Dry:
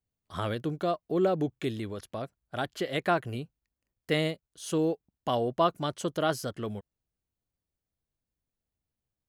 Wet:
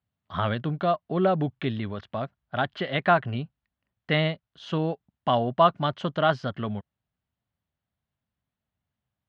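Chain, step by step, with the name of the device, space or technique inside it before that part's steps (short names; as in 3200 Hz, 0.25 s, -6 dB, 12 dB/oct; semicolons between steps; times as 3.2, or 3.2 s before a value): guitar cabinet (speaker cabinet 84–3400 Hz, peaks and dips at 330 Hz -10 dB, 470 Hz -9 dB, 2400 Hz -4 dB); gain +7.5 dB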